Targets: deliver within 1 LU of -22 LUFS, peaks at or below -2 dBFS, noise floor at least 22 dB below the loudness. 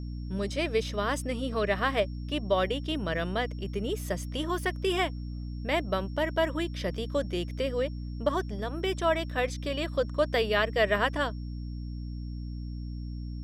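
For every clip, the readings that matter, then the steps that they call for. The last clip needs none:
hum 60 Hz; harmonics up to 300 Hz; hum level -34 dBFS; steady tone 5500 Hz; tone level -59 dBFS; loudness -30.5 LUFS; peak -12.0 dBFS; loudness target -22.0 LUFS
-> de-hum 60 Hz, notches 5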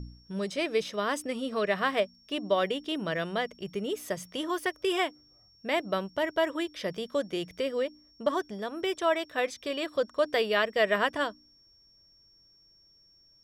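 hum none; steady tone 5500 Hz; tone level -59 dBFS
-> notch 5500 Hz, Q 30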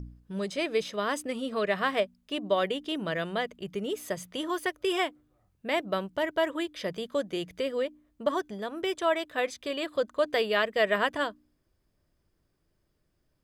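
steady tone none; loudness -30.5 LUFS; peak -12.5 dBFS; loudness target -22.0 LUFS
-> gain +8.5 dB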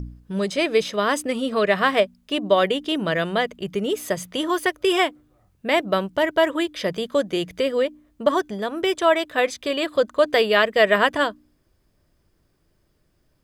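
loudness -22.0 LUFS; peak -4.0 dBFS; noise floor -66 dBFS

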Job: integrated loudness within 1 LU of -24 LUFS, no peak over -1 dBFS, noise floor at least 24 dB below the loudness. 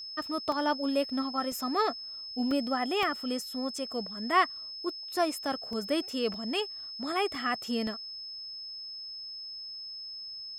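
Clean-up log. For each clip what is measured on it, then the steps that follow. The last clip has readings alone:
dropouts 8; longest dropout 1.7 ms; steady tone 5200 Hz; tone level -39 dBFS; loudness -32.0 LUFS; peak -11.5 dBFS; loudness target -24.0 LUFS
-> interpolate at 0.52/1.52/2.51/3.03/5.73/6.34/7.35/7.87, 1.7 ms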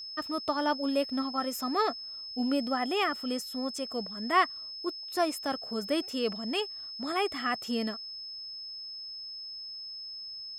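dropouts 0; steady tone 5200 Hz; tone level -39 dBFS
-> notch 5200 Hz, Q 30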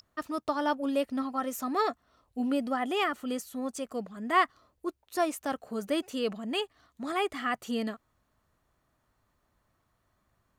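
steady tone none; loudness -32.0 LUFS; peak -12.0 dBFS; loudness target -24.0 LUFS
-> gain +8 dB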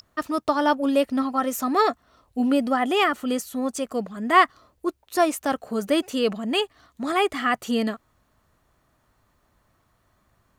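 loudness -24.0 LUFS; peak -4.0 dBFS; noise floor -67 dBFS

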